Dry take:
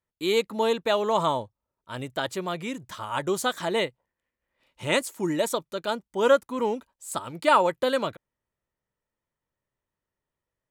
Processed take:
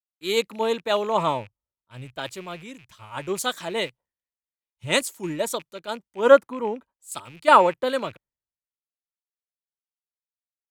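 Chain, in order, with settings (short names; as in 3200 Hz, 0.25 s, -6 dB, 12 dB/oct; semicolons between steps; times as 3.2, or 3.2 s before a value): rattling part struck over -48 dBFS, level -30 dBFS; three-band expander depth 100%; gain -1 dB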